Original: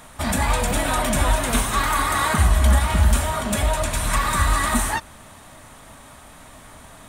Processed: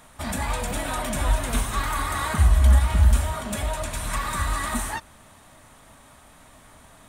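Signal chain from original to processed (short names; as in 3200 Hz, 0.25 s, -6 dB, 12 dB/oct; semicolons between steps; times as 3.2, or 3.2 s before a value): 1.23–3.37 bell 62 Hz +7.5 dB 1.5 oct; gain -6.5 dB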